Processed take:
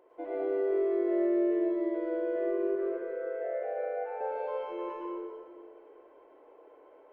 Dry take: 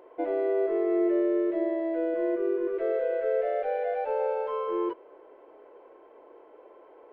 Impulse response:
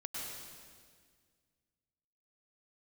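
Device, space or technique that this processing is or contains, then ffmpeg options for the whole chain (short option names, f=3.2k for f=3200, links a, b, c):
stairwell: -filter_complex "[0:a]asettb=1/sr,asplit=3[a][b][c];[a]atrim=end=2.754[d];[b]atrim=start=2.75:end=4.21,asetpts=PTS-STARTPTS,afade=t=in:d=0.004:c=qsin,afade=t=out:st=1.456:d=0.004:c=qsin,acrossover=split=440 2100:gain=0.112 1 0.126[e][f][g];[e][f][g]amix=inputs=3:normalize=0[h];[c]atrim=start=4.206[i];[d][h]acrossfade=d=0.004:c1=hsin:c2=qsin[j];[j][i]acrossfade=d=0.004:c1=qsin:c2=hsin[k];[1:a]atrim=start_sample=2205[l];[k][l]afir=irnorm=-1:irlink=0,volume=-4.5dB"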